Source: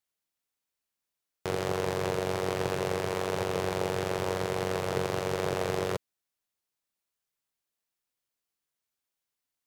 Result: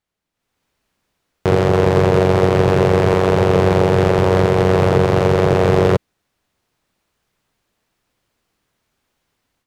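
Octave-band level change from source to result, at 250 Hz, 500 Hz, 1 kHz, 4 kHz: +18.5, +16.5, +14.5, +9.0 dB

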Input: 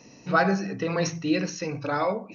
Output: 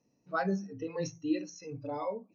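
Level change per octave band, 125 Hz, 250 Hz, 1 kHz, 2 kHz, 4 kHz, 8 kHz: -10.5 dB, -7.5 dB, -11.0 dB, -13.5 dB, -14.0 dB, n/a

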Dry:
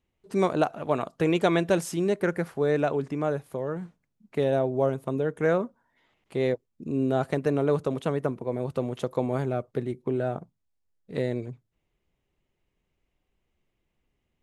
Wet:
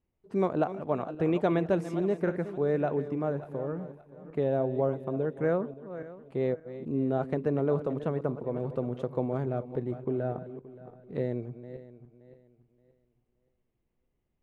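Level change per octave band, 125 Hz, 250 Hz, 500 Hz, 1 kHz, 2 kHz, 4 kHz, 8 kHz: -2.0 dB, -2.5 dB, -3.0 dB, -4.5 dB, -8.0 dB, under -10 dB, n/a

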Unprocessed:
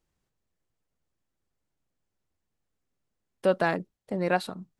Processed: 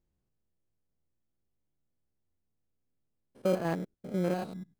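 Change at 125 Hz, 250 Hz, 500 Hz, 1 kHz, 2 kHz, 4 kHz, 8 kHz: +0.5 dB, -0.5 dB, -5.0 dB, -9.0 dB, -12.5 dB, -8.0 dB, n/a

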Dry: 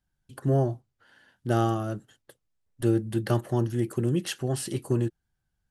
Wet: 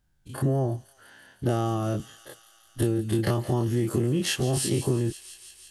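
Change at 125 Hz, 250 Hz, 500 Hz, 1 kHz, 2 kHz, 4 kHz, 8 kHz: +1.5, +1.0, +0.5, -1.0, +3.0, +6.5, +6.5 dB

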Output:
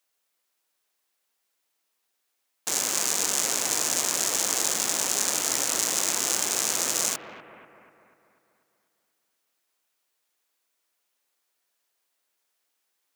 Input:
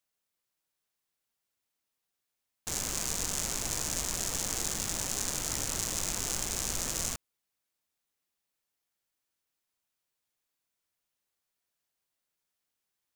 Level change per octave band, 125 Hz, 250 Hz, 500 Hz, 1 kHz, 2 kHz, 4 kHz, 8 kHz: -7.5, +3.5, +8.0, +8.5, +8.5, +8.0, +8.0 dB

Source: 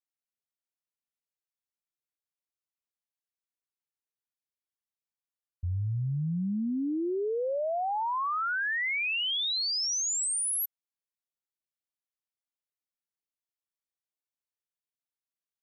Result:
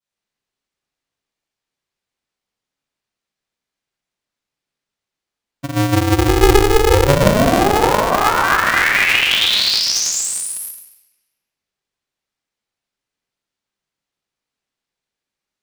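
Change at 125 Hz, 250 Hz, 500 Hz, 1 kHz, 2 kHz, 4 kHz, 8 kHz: +14.5, +14.5, +18.0, +16.5, +16.0, +14.5, +10.0 dB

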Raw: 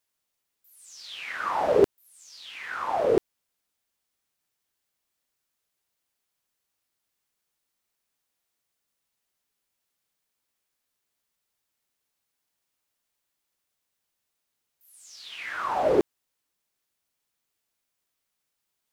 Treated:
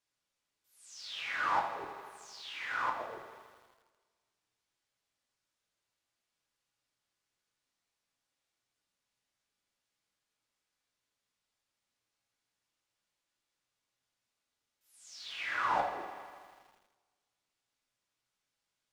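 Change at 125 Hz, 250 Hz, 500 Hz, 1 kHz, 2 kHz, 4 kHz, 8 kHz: -15.5, -21.0, -20.0, -4.0, -1.0, -2.5, -5.5 dB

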